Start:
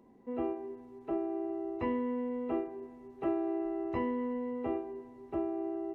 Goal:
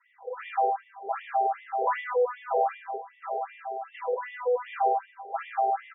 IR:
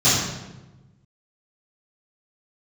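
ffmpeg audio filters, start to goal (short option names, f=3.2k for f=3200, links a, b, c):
-filter_complex "[0:a]equalizer=f=2.2k:w=1.5:g=2.5,bandreject=f=50:t=h:w=6,bandreject=f=100:t=h:w=6,bandreject=f=150:t=h:w=6,bandreject=f=200:t=h:w=6,bandreject=f=250:t=h:w=6,asettb=1/sr,asplit=3[a][b][c];[a]atrim=end=2.784[d];[b]atrim=start=2.78:end=4.13,asetpts=PTS-STARTPTS,afade=t=in:d=0.004:c=qsin,afade=t=out:st=1.346:d=0.004:c=qsin,acrossover=split=340|3000[e][f][g];[f]acompressor=threshold=-47dB:ratio=8[h];[e][h][g]amix=inputs=3:normalize=0[i];[c]atrim=start=4.126[j];[d][i]acrossfade=d=0.004:c1=hsin:c2=qsin[k];[k][j]acrossfade=d=0.004:c1=qsin:c2=hsin,asplit=2[l][m];[m]alimiter=level_in=10dB:limit=-24dB:level=0:latency=1,volume=-10dB,volume=0.5dB[n];[l][n]amix=inputs=2:normalize=0,aeval=exprs='clip(val(0),-1,0.0422)':c=same,aecho=1:1:98:0.376[o];[1:a]atrim=start_sample=2205,asetrate=52920,aresample=44100[p];[o][p]afir=irnorm=-1:irlink=0,afftfilt=real='re*between(b*sr/1024,560*pow(2600/560,0.5+0.5*sin(2*PI*2.6*pts/sr))/1.41,560*pow(2600/560,0.5+0.5*sin(2*PI*2.6*pts/sr))*1.41)':imag='im*between(b*sr/1024,560*pow(2600/560,0.5+0.5*sin(2*PI*2.6*pts/sr))/1.41,560*pow(2600/560,0.5+0.5*sin(2*PI*2.6*pts/sr))*1.41)':win_size=1024:overlap=0.75,volume=-4.5dB"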